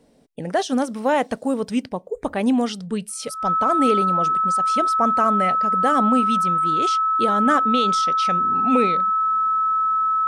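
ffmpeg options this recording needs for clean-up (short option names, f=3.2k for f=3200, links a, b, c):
-af "bandreject=f=1.3k:w=30"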